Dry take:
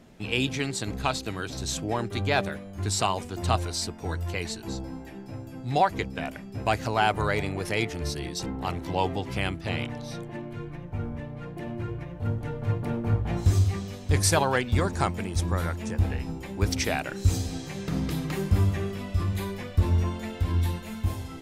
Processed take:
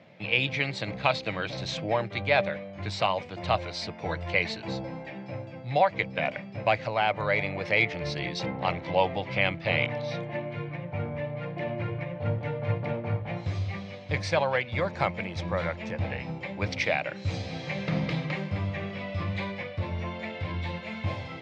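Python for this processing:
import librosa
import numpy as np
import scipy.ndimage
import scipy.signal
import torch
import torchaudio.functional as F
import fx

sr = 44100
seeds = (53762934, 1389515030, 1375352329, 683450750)

y = fx.peak_eq(x, sr, hz=250.0, db=-11.0, octaves=0.33)
y = fx.rider(y, sr, range_db=4, speed_s=0.5)
y = fx.cabinet(y, sr, low_hz=110.0, low_slope=24, high_hz=4400.0, hz=(390.0, 560.0, 1400.0, 2200.0), db=(-9, 9, -3, 9))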